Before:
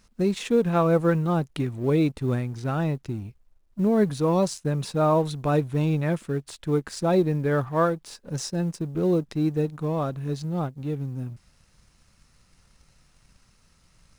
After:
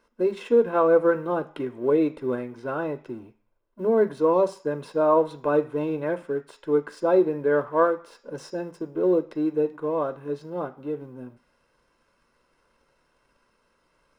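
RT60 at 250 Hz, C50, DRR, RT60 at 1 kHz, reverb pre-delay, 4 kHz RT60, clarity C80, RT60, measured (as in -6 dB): 0.40 s, 17.5 dB, 9.5 dB, 0.50 s, 3 ms, 0.60 s, 21.5 dB, 0.45 s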